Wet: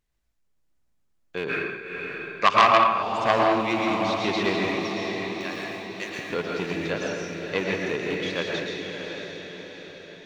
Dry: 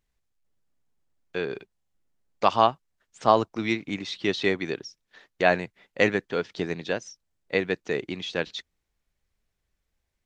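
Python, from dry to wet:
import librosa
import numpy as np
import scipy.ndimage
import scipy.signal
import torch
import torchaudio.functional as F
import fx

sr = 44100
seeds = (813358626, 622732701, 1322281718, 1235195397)

y = fx.rattle_buzz(x, sr, strikes_db=-32.0, level_db=-23.0)
y = fx.differentiator(y, sr, at=(4.69, 6.19))
y = fx.echo_diffused(y, sr, ms=605, feedback_pct=52, wet_db=-6)
y = fx.rev_plate(y, sr, seeds[0], rt60_s=0.9, hf_ratio=0.9, predelay_ms=100, drr_db=-0.5)
y = fx.spec_box(y, sr, start_s=1.49, length_s=1.53, low_hz=1000.0, high_hz=2700.0, gain_db=9)
y = fx.transformer_sat(y, sr, knee_hz=2200.0)
y = y * librosa.db_to_amplitude(-1.0)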